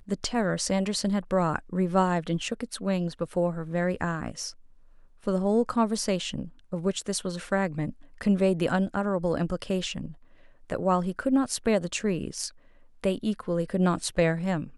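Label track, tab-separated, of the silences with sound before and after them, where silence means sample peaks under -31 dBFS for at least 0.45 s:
4.500000	5.270000	silence
10.060000	10.700000	silence
12.480000	13.040000	silence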